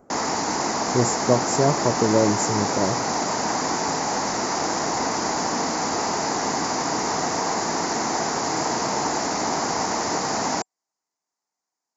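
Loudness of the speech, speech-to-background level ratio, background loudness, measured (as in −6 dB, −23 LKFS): −23.5 LKFS, 0.5 dB, −24.0 LKFS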